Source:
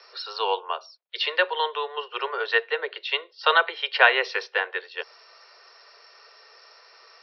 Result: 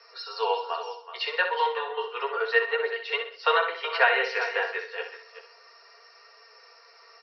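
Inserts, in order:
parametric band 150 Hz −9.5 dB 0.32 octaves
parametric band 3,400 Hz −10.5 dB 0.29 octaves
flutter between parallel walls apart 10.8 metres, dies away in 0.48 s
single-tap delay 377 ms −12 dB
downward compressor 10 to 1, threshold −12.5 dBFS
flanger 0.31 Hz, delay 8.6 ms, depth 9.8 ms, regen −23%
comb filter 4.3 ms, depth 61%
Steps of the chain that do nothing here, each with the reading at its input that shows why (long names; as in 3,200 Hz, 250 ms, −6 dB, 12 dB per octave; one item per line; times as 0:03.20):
parametric band 150 Hz: nothing at its input below 320 Hz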